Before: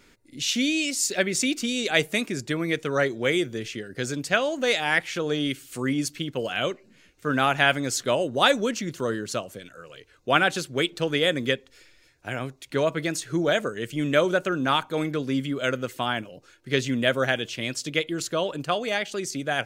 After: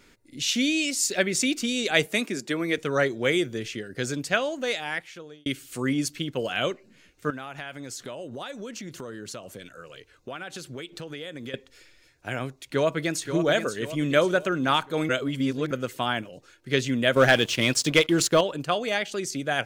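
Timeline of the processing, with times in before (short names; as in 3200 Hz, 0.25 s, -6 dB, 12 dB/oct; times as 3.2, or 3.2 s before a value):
2.06–2.78 HPF 180 Hz 24 dB/oct
4.13–5.46 fade out
7.3–11.54 compressor, threshold -34 dBFS
12.64–13.26 echo throw 0.53 s, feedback 50%, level -8.5 dB
15.09–15.71 reverse
17.16–18.41 sample leveller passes 2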